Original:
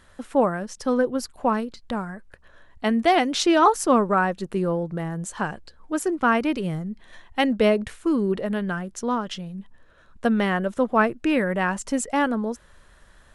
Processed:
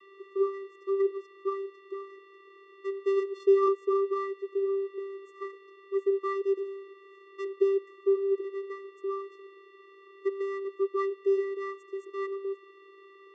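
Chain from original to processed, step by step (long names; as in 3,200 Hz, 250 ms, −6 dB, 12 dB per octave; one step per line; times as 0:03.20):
running median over 15 samples
noise in a band 280–2,800 Hz −43 dBFS
channel vocoder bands 16, square 392 Hz
level −6 dB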